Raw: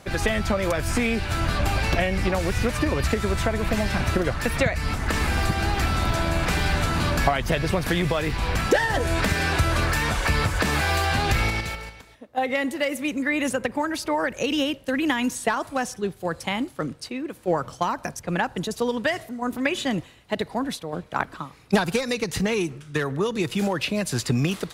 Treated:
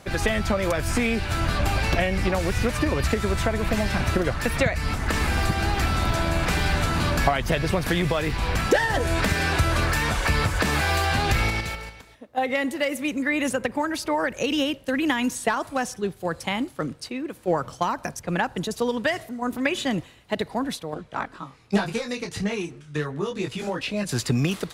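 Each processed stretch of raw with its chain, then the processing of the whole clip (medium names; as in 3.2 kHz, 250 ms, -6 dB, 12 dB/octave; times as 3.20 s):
20.94–24.09 s: low-pass 9.6 kHz + detune thickener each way 11 cents
whole clip: none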